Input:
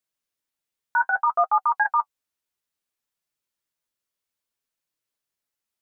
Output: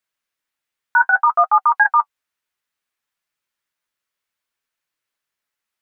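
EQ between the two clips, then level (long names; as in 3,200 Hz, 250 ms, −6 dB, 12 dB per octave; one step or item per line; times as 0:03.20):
parametric band 1,700 Hz +9 dB 2.1 octaves
0.0 dB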